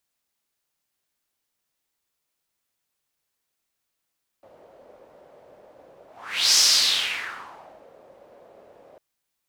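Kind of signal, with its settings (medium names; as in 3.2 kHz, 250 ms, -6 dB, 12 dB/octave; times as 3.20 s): whoosh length 4.55 s, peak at 2.13 s, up 0.51 s, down 1.40 s, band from 560 Hz, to 5.4 kHz, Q 3.8, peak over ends 34.5 dB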